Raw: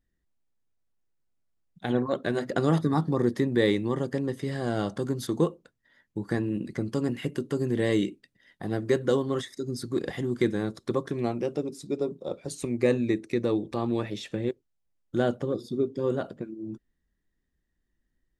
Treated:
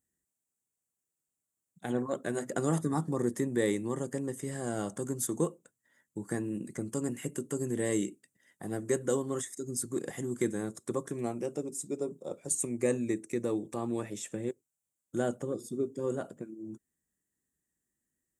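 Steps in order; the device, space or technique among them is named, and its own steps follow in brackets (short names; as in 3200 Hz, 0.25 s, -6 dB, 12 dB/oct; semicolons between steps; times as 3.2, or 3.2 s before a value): budget condenser microphone (HPF 110 Hz; resonant high shelf 5800 Hz +11 dB, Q 3); gain -5.5 dB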